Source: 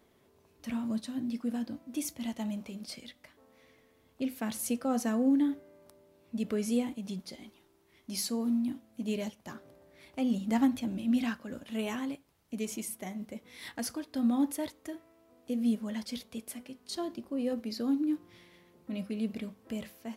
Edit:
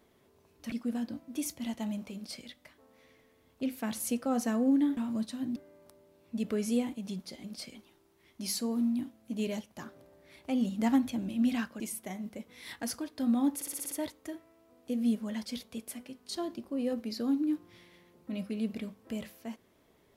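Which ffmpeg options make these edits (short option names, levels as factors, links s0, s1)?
-filter_complex "[0:a]asplit=13[s0][s1][s2][s3][s4][s5][s6][s7][s8][s9][s10][s11][s12];[s0]atrim=end=0.722[s13];[s1]atrim=start=1.308:end=5.562[s14];[s2]atrim=start=0.718:end=1.312[s15];[s3]atrim=start=5.558:end=7.442[s16];[s4]atrim=start=2.738:end=3.052[s17];[s5]atrim=start=7.438:end=11.492[s18];[s6]atrim=start=12.758:end=14.572[s19];[s7]atrim=start=14.508:end=14.572[s20];[s8]atrim=start=14.508:end=14.572[s21];[s9]atrim=start=14.508:end=14.572[s22];[s10]atrim=start=14.508:end=14.572[s23];[s11]atrim=start=14.508:end=14.572[s24];[s12]atrim=start=14.508[s25];[s13][s14]acrossfade=d=0.004:c1=hsin:c2=hsin[s26];[s26][s15]acrossfade=d=0.004:c1=hsin:c2=hsin[s27];[s27][s16]acrossfade=d=0.004:c1=hsin:c2=hsin[s28];[s28][s17]acrossfade=d=0.004:c1=hsin:c2=hsin[s29];[s29][s18]acrossfade=d=0.004:c1=hsin:c2=hsin[s30];[s30][s19]acrossfade=d=0.004:c1=hsin:c2=hsin[s31];[s31][s20]acrossfade=d=0.004:c1=hsin:c2=hsin[s32];[s32][s21]acrossfade=d=0.004:c1=hsin:c2=hsin[s33];[s33][s22]acrossfade=d=0.004:c1=hsin:c2=hsin[s34];[s34][s23]acrossfade=d=0.004:c1=hsin:c2=hsin[s35];[s35][s24]acrossfade=d=0.004:c1=hsin:c2=hsin[s36];[s36][s25]acrossfade=d=0.004:c1=hsin:c2=hsin"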